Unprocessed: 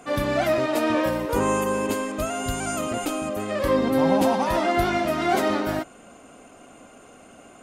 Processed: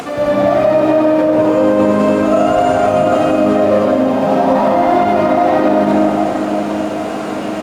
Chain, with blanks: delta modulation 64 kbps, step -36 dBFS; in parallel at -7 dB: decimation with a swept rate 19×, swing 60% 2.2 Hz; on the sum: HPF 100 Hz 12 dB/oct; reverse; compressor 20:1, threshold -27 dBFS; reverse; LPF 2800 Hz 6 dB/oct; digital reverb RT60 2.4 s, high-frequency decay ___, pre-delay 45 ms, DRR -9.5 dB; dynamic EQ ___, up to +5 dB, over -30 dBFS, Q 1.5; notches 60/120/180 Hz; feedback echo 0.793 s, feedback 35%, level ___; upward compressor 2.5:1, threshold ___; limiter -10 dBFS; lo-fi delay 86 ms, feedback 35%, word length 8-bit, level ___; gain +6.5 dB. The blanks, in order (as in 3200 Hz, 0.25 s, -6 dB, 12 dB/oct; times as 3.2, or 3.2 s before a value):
0.35×, 680 Hz, -11 dB, -23 dBFS, -14 dB